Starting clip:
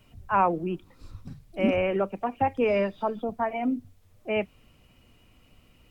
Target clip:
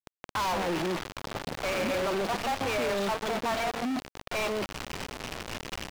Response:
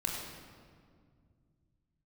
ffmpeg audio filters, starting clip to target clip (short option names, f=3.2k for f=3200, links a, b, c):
-filter_complex "[0:a]aeval=exprs='val(0)+0.5*0.0316*sgn(val(0))':c=same,highshelf=f=2.1k:g=4,bandreject=f=60:t=h:w=6,bandreject=f=120:t=h:w=6,acrossover=split=520|3900[a][b][c];[b]adelay=60[d];[a]adelay=200[e];[e][d][c]amix=inputs=3:normalize=0,aresample=11025,volume=28.5dB,asoftclip=hard,volume=-28.5dB,aresample=44100,acrusher=bits=4:mix=0:aa=0.000001,acompressor=threshold=-31dB:ratio=6,asplit=2[f][g];[g]highpass=f=720:p=1,volume=29dB,asoftclip=type=tanh:threshold=-23.5dB[h];[f][h]amix=inputs=2:normalize=0,lowpass=f=3.5k:p=1,volume=-6dB"